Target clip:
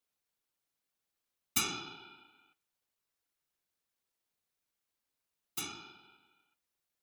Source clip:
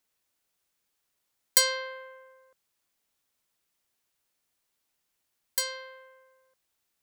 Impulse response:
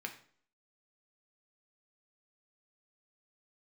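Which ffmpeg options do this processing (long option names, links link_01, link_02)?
-filter_complex "[0:a]asplit=2[link_01][link_02];[1:a]atrim=start_sample=2205,lowpass=frequency=6700:width=0.5412,lowpass=frequency=6700:width=1.3066,highshelf=frequency=3000:gain=3.5[link_03];[link_02][link_03]afir=irnorm=-1:irlink=0,volume=-10.5dB[link_04];[link_01][link_04]amix=inputs=2:normalize=0,afftfilt=real='hypot(re,im)*cos(2*PI*random(0))':imag='hypot(re,im)*sin(2*PI*random(1))':win_size=512:overlap=0.75,aeval=exprs='val(0)*sin(2*PI*1900*n/s)':channel_layout=same"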